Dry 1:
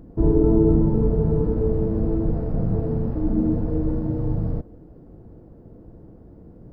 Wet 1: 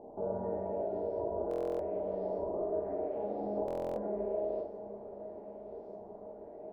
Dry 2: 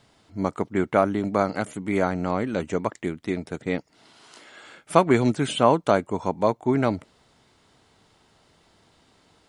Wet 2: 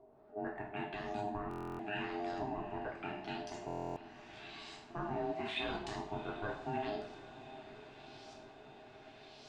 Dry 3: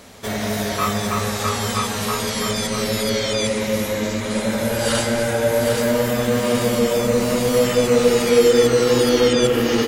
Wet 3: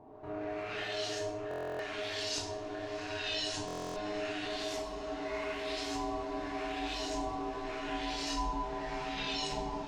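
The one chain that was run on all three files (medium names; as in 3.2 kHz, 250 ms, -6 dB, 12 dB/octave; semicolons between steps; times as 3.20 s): high-pass 64 Hz 12 dB/octave; amplifier tone stack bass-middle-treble 6-0-2; in parallel at +3 dB: compression, threshold -53 dBFS; on the sum: peak limiter -33 dBFS; upward compressor, threshold -57 dBFS; LFO low-pass saw up 0.84 Hz 420–6200 Hz; ring modulator 520 Hz; echo that smears into a reverb 763 ms, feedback 75%, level -15 dB; plate-style reverb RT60 0.59 s, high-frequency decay 0.95×, pre-delay 0 ms, DRR -1.5 dB; buffer glitch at 1.49/3.66 s, samples 1024, times 12; trim +3 dB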